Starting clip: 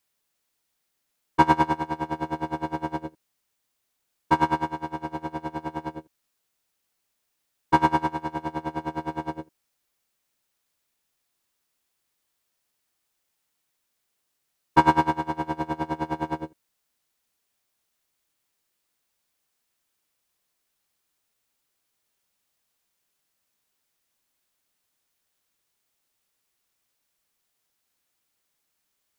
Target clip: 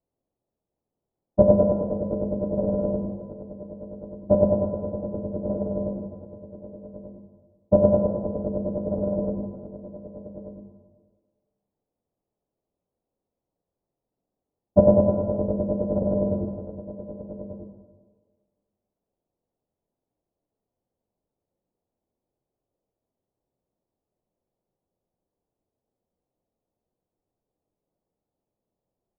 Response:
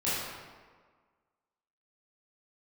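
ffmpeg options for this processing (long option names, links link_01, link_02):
-filter_complex "[0:a]lowpass=frequency=1100:width=0.5412,lowpass=frequency=1100:width=1.3066,asetrate=27781,aresample=44100,atempo=1.5874,aecho=1:1:1187:0.266,asplit=2[link_01][link_02];[1:a]atrim=start_sample=2205[link_03];[link_02][link_03]afir=irnorm=-1:irlink=0,volume=-12.5dB[link_04];[link_01][link_04]amix=inputs=2:normalize=0,volume=1.5dB"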